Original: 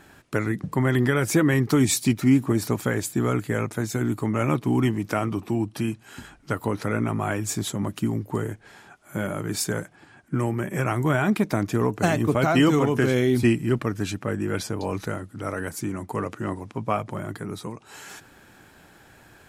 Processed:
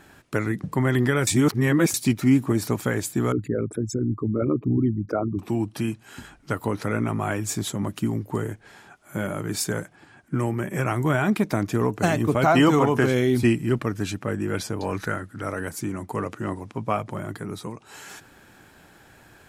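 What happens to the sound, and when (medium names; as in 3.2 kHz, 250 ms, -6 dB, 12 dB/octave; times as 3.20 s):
1.27–1.94 s: reverse
3.32–5.39 s: resonances exaggerated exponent 3
12.44–13.07 s: peaking EQ 890 Hz +6.5 dB 1.2 oct
14.81–15.45 s: peaking EQ 1.6 kHz +9 dB 0.61 oct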